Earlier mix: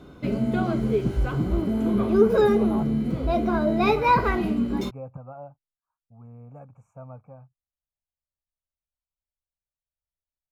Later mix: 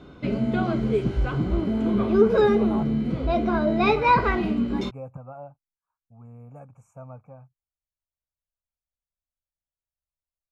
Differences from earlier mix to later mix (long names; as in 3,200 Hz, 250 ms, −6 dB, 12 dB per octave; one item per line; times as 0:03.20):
background: add low-pass filter 3,300 Hz 12 dB per octave
master: add high-shelf EQ 3,800 Hz +12 dB